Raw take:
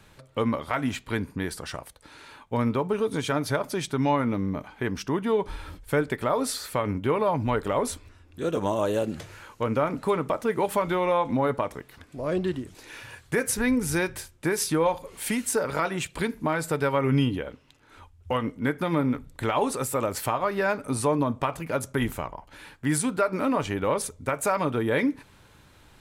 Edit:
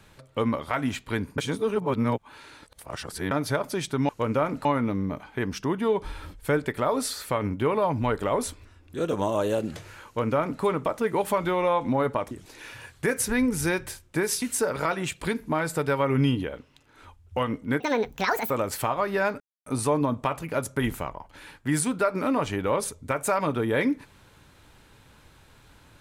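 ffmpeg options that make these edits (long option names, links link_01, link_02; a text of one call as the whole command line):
ffmpeg -i in.wav -filter_complex "[0:a]asplit=10[link_01][link_02][link_03][link_04][link_05][link_06][link_07][link_08][link_09][link_10];[link_01]atrim=end=1.382[link_11];[link_02]atrim=start=1.378:end=3.312,asetpts=PTS-STARTPTS,areverse[link_12];[link_03]atrim=start=3.308:end=4.092[link_13];[link_04]atrim=start=9.498:end=10.062[link_14];[link_05]atrim=start=4.088:end=11.752[link_15];[link_06]atrim=start=12.598:end=14.712[link_16];[link_07]atrim=start=15.358:end=18.744[link_17];[link_08]atrim=start=18.74:end=19.94,asetpts=PTS-STARTPTS,asetrate=75411,aresample=44100,atrim=end_sample=30947,asetpts=PTS-STARTPTS[link_18];[link_09]atrim=start=19.936:end=20.84,asetpts=PTS-STARTPTS,afade=type=out:start_time=0.9:duration=0.004:curve=hsin,apad=pad_dur=0.26[link_19];[link_10]atrim=start=20.84,asetpts=PTS-STARTPTS,afade=type=in:duration=0.004:curve=hsin[link_20];[link_11][link_12]acrossfade=duration=0.004:curve1=hsin:curve2=hsin[link_21];[link_21][link_13]acrossfade=duration=0.004:curve1=hsin:curve2=hsin[link_22];[link_22][link_14]acrossfade=duration=0.004:curve1=hsin:curve2=hsin[link_23];[link_23][link_15]acrossfade=duration=0.004:curve1=hsin:curve2=hsin[link_24];[link_24][link_16]acrossfade=duration=0.004:curve1=hsin:curve2=hsin[link_25];[link_25][link_17]acrossfade=duration=0.004:curve1=hsin:curve2=hsin[link_26];[link_26][link_18]acrossfade=duration=0.004:curve1=hsin:curve2=hsin[link_27];[link_19][link_20]concat=n=2:v=0:a=1[link_28];[link_27][link_28]acrossfade=duration=0.004:curve1=hsin:curve2=hsin" out.wav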